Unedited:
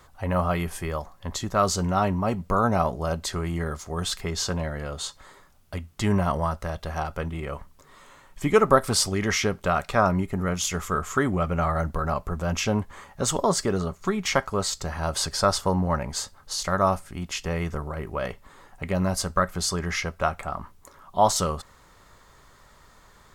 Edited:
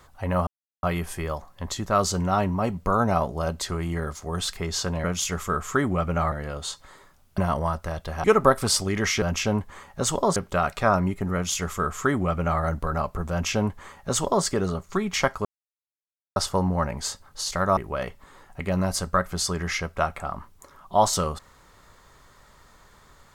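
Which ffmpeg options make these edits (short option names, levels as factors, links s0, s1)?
-filter_complex "[0:a]asplit=11[s0][s1][s2][s3][s4][s5][s6][s7][s8][s9][s10];[s0]atrim=end=0.47,asetpts=PTS-STARTPTS,afade=t=out:st=0.466:d=0.004:c=hsin,apad=pad_dur=0.36[s11];[s1]atrim=start=0.47:end=4.682,asetpts=PTS-STARTPTS,afade=t=in:d=0.004:c=hsin[s12];[s2]atrim=start=10.458:end=11.742[s13];[s3]atrim=start=4.678:end=5.742[s14];[s4]atrim=start=6.158:end=7.022[s15];[s5]atrim=start=8.498:end=9.482[s16];[s6]atrim=start=12.428:end=13.572[s17];[s7]atrim=start=9.478:end=14.57,asetpts=PTS-STARTPTS,afade=t=out:st=5.088:d=0.004:c=hsin[s18];[s8]atrim=start=14.57:end=15.48,asetpts=PTS-STARTPTS,volume=0[s19];[s9]atrim=start=15.48:end=16.892,asetpts=PTS-STARTPTS,afade=t=in:d=0.004:c=hsin[s20];[s10]atrim=start=17.998[s21];[s11][s12]concat=n=2:v=0:a=1[s22];[s22][s13]acrossfade=d=0.004:c1=hsin:c2=hsin[s23];[s23][s14]acrossfade=d=0.004:c1=hsin:c2=hsin[s24];[s24][s15]acrossfade=d=0.004:c1=hsin:c2=hsin[s25];[s25][s16]acrossfade=d=0.004:c1=hsin:c2=hsin[s26];[s26][s17]acrossfade=d=0.004:c1=hsin:c2=hsin[s27];[s18][s19][s20]concat=n=3:v=0:a=1[s28];[s27][s28]acrossfade=d=0.004:c1=hsin:c2=hsin[s29];[s29][s21]acrossfade=d=0.004:c1=hsin:c2=hsin"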